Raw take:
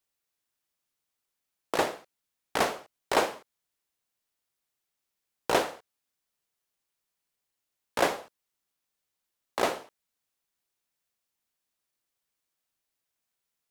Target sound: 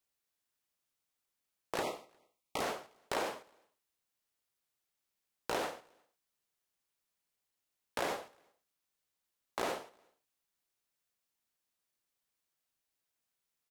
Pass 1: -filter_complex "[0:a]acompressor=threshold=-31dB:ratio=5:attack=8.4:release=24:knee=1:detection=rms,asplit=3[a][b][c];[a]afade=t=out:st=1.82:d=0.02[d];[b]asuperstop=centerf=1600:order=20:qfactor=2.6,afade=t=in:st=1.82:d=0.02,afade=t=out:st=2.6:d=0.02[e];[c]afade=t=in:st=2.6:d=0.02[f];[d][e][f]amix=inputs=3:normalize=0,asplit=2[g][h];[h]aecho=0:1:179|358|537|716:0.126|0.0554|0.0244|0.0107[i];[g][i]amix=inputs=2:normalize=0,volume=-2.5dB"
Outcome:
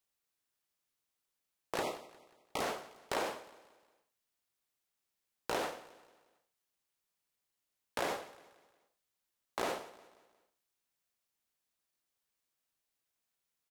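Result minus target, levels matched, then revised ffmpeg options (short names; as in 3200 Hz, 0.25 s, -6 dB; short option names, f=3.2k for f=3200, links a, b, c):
echo-to-direct +9 dB
-filter_complex "[0:a]acompressor=threshold=-31dB:ratio=5:attack=8.4:release=24:knee=1:detection=rms,asplit=3[a][b][c];[a]afade=t=out:st=1.82:d=0.02[d];[b]asuperstop=centerf=1600:order=20:qfactor=2.6,afade=t=in:st=1.82:d=0.02,afade=t=out:st=2.6:d=0.02[e];[c]afade=t=in:st=2.6:d=0.02[f];[d][e][f]amix=inputs=3:normalize=0,asplit=2[g][h];[h]aecho=0:1:179|358:0.0447|0.0197[i];[g][i]amix=inputs=2:normalize=0,volume=-2.5dB"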